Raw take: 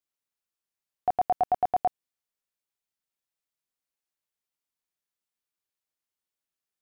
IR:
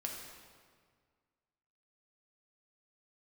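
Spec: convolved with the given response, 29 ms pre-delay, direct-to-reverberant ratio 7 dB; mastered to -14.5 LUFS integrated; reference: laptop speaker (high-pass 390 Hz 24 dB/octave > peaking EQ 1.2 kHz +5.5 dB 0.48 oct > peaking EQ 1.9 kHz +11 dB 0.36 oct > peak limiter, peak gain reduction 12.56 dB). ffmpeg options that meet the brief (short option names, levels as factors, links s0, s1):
-filter_complex "[0:a]asplit=2[s0][s1];[1:a]atrim=start_sample=2205,adelay=29[s2];[s1][s2]afir=irnorm=-1:irlink=0,volume=0.447[s3];[s0][s3]amix=inputs=2:normalize=0,highpass=f=390:w=0.5412,highpass=f=390:w=1.3066,equalizer=f=1200:t=o:w=0.48:g=5.5,equalizer=f=1900:t=o:w=0.36:g=11,volume=15,alimiter=limit=0.562:level=0:latency=1"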